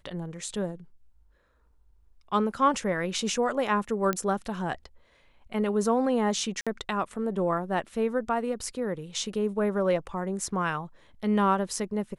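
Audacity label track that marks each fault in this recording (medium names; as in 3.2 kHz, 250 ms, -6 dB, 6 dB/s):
4.130000	4.130000	pop -14 dBFS
6.610000	6.670000	dropout 56 ms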